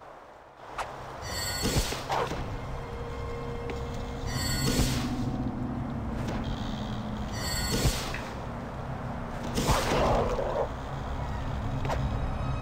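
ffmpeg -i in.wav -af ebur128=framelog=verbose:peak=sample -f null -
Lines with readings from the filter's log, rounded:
Integrated loudness:
  I:         -31.5 LUFS
  Threshold: -41.7 LUFS
Loudness range:
  LRA:         2.9 LU
  Threshold: -51.4 LUFS
  LRA low:   -32.8 LUFS
  LRA high:  -29.9 LUFS
Sample peak:
  Peak:      -13.0 dBFS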